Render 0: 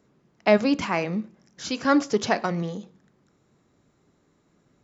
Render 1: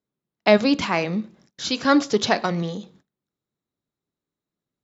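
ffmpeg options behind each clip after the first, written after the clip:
ffmpeg -i in.wav -af "agate=range=-26dB:threshold=-55dB:ratio=16:detection=peak,equalizer=frequency=3800:width=2.4:gain=8,volume=2.5dB" out.wav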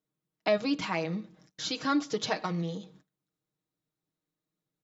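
ffmpeg -i in.wav -af "aecho=1:1:6.4:0.68,acompressor=threshold=-37dB:ratio=1.5,volume=-3.5dB" out.wav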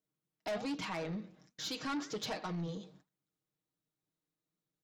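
ffmpeg -i in.wav -af "flanger=delay=3.8:depth=9.9:regen=88:speed=1.3:shape=triangular,asoftclip=type=tanh:threshold=-34dB,volume=1dB" out.wav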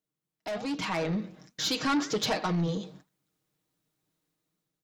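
ffmpeg -i in.wav -af "dynaudnorm=framelen=320:gausssize=5:maxgain=10.5dB" out.wav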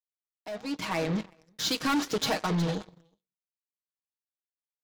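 ffmpeg -i in.wav -af "aecho=1:1:365:0.188,aeval=exprs='0.0891*(cos(1*acos(clip(val(0)/0.0891,-1,1)))-cos(1*PI/2))+0.0126*(cos(7*acos(clip(val(0)/0.0891,-1,1)))-cos(7*PI/2))':channel_layout=same" out.wav

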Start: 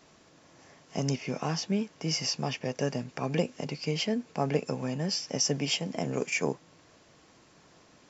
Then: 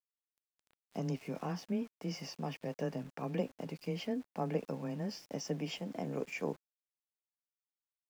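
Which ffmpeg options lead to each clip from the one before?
ffmpeg -i in.wav -af "lowpass=frequency=1600:poles=1,afreqshift=14,aeval=exprs='val(0)*gte(abs(val(0)),0.00422)':channel_layout=same,volume=-6.5dB" out.wav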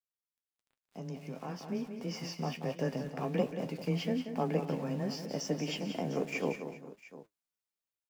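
ffmpeg -i in.wav -af "flanger=delay=7.5:depth=4.7:regen=60:speed=1.4:shape=sinusoidal,aecho=1:1:182|246|397|702:0.355|0.126|0.112|0.15,dynaudnorm=framelen=380:gausssize=9:maxgain=11.5dB,volume=-3.5dB" out.wav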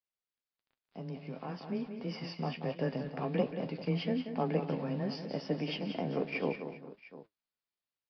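ffmpeg -i in.wav -af "aresample=11025,aresample=44100" out.wav

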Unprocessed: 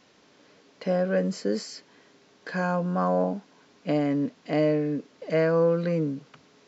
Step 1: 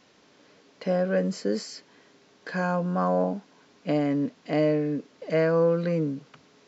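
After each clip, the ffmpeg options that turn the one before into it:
ffmpeg -i in.wav -af anull out.wav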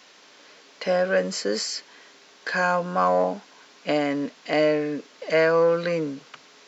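ffmpeg -i in.wav -af "acontrast=90,highpass=frequency=1100:poles=1,volume=3.5dB" out.wav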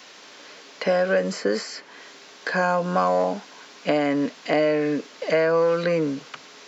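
ffmpeg -i in.wav -filter_complex "[0:a]acrossover=split=1000|2300[link_01][link_02][link_03];[link_01]acompressor=threshold=-25dB:ratio=4[link_04];[link_02]acompressor=threshold=-37dB:ratio=4[link_05];[link_03]acompressor=threshold=-44dB:ratio=4[link_06];[link_04][link_05][link_06]amix=inputs=3:normalize=0,volume=6dB" out.wav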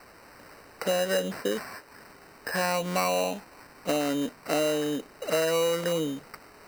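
ffmpeg -i in.wav -af "acrusher=samples=13:mix=1:aa=0.000001,volume=-5.5dB" out.wav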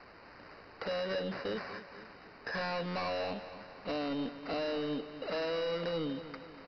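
ffmpeg -i in.wav -af "aresample=11025,asoftclip=type=tanh:threshold=-29.5dB,aresample=44100,aecho=1:1:240|480|720|960|1200:0.224|0.112|0.056|0.028|0.014,volume=-2.5dB" out.wav

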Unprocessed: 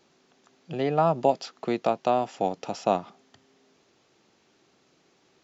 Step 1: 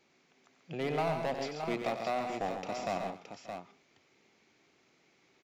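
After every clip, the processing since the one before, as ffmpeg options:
ffmpeg -i in.wav -af "equalizer=frequency=2200:width_type=o:width=0.37:gain=10.5,asoftclip=type=hard:threshold=-21dB,aecho=1:1:93|137|227|583|620:0.355|0.447|0.112|0.106|0.422,volume=-7dB" out.wav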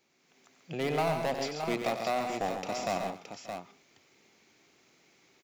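ffmpeg -i in.wav -af "highshelf=frequency=7200:gain=12,dynaudnorm=framelen=180:gausssize=3:maxgain=7dB,volume=-4.5dB" out.wav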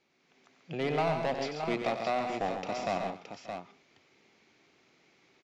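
ffmpeg -i in.wav -af "lowpass=4600" out.wav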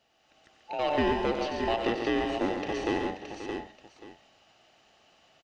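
ffmpeg -i in.wav -filter_complex "[0:a]afftfilt=real='real(if(between(b,1,1008),(2*floor((b-1)/48)+1)*48-b,b),0)':imag='imag(if(between(b,1,1008),(2*floor((b-1)/48)+1)*48-b,b),0)*if(between(b,1,1008),-1,1)':win_size=2048:overlap=0.75,acrossover=split=4500[link_01][link_02];[link_02]acompressor=threshold=-56dB:ratio=4:attack=1:release=60[link_03];[link_01][link_03]amix=inputs=2:normalize=0,aecho=1:1:533:0.251,volume=3dB" out.wav

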